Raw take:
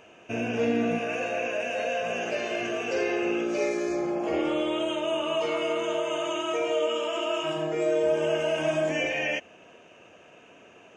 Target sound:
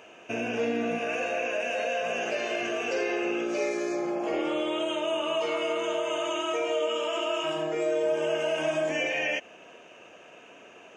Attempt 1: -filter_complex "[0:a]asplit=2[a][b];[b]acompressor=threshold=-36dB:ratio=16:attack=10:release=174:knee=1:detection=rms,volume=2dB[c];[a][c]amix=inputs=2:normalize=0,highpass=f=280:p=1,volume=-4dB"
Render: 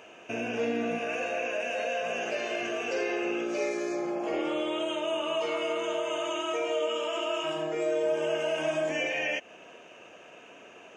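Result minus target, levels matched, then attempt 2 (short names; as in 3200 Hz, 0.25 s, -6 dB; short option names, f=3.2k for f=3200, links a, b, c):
compressor: peak gain reduction +5.5 dB
-filter_complex "[0:a]asplit=2[a][b];[b]acompressor=threshold=-30dB:ratio=16:attack=10:release=174:knee=1:detection=rms,volume=2dB[c];[a][c]amix=inputs=2:normalize=0,highpass=f=280:p=1,volume=-4dB"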